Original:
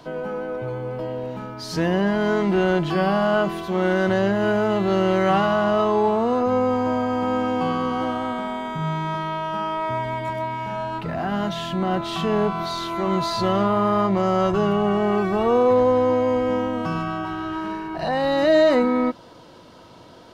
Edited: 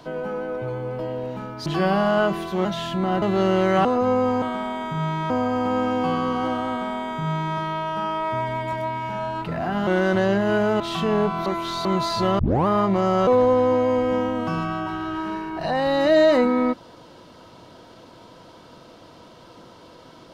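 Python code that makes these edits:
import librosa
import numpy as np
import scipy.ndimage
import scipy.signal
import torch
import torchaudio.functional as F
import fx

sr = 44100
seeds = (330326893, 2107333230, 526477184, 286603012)

y = fx.edit(x, sr, fx.cut(start_s=1.66, length_s=1.16),
    fx.swap(start_s=3.81, length_s=0.93, other_s=11.44, other_length_s=0.57),
    fx.cut(start_s=5.37, length_s=0.93),
    fx.duplicate(start_s=8.26, length_s=0.88, to_s=6.87),
    fx.reverse_span(start_s=12.67, length_s=0.39),
    fx.tape_start(start_s=13.6, length_s=0.28),
    fx.cut(start_s=14.48, length_s=1.17), tone=tone)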